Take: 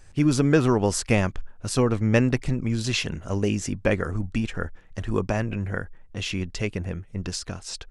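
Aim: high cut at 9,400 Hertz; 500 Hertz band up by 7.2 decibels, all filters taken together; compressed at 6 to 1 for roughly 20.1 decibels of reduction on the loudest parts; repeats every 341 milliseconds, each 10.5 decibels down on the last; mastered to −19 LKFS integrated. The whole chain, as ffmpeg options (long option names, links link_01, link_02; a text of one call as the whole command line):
ffmpeg -i in.wav -af "lowpass=9400,equalizer=frequency=500:width_type=o:gain=8.5,acompressor=threshold=-32dB:ratio=6,aecho=1:1:341|682|1023:0.299|0.0896|0.0269,volume=17dB" out.wav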